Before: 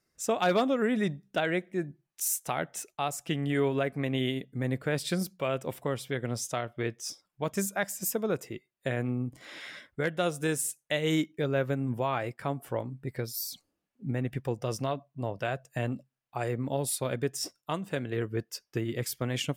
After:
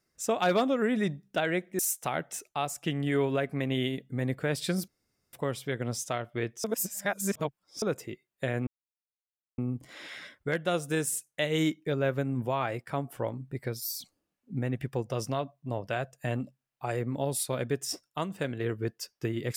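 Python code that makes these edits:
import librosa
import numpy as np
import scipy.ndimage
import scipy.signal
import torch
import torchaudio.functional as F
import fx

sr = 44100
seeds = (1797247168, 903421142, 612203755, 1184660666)

y = fx.edit(x, sr, fx.cut(start_s=1.79, length_s=0.43),
    fx.room_tone_fill(start_s=5.31, length_s=0.45),
    fx.reverse_span(start_s=7.07, length_s=1.18),
    fx.insert_silence(at_s=9.1, length_s=0.91), tone=tone)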